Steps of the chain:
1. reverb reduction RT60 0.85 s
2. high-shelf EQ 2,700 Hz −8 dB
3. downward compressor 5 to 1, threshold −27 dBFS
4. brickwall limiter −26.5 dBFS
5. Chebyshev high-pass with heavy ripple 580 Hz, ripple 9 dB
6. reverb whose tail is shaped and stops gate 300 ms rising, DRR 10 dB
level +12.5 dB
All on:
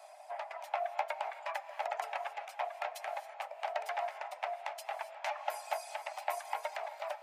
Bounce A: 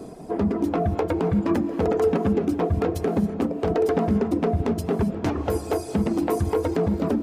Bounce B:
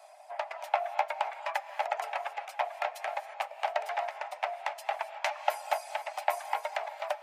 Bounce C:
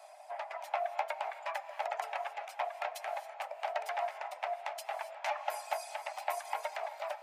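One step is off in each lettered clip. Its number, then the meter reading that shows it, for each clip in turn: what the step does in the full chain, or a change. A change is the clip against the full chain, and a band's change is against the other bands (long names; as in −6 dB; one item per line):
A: 5, 500 Hz band +12.5 dB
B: 4, average gain reduction 2.0 dB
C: 3, average gain reduction 4.0 dB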